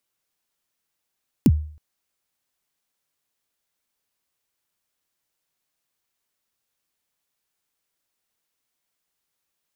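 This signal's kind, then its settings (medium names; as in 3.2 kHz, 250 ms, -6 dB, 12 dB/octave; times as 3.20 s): kick drum length 0.32 s, from 310 Hz, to 76 Hz, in 47 ms, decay 0.49 s, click on, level -8 dB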